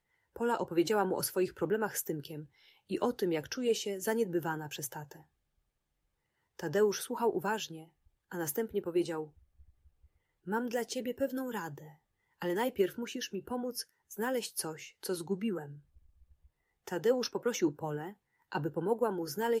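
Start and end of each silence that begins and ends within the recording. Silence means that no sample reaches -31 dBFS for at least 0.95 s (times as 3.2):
4.96–6.6
9.21–10.49
15.59–16.88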